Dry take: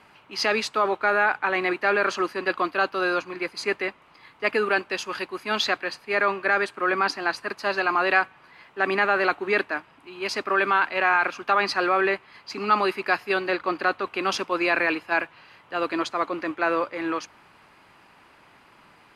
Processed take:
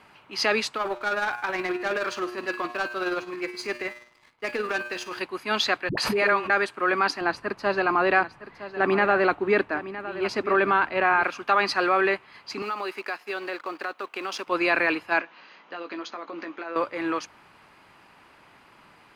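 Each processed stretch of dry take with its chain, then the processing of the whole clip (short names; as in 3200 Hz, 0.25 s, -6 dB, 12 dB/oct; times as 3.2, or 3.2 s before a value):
0.76–5.21 resonator 120 Hz, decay 0.81 s, mix 70% + sample leveller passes 2 + tremolo 19 Hz, depth 42%
5.89–6.5 dispersion highs, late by 85 ms, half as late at 400 Hz + backwards sustainer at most 25 dB/s
7.21–11.24 tilt -2.5 dB/oct + echo 0.962 s -13.5 dB
12.62–14.47 G.711 law mismatch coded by A + HPF 300 Hz + compressor 3:1, threshold -29 dBFS
15.19–16.76 compressor 12:1, threshold -32 dBFS + brick-wall FIR band-pass 170–6800 Hz + doubler 18 ms -8 dB
whole clip: dry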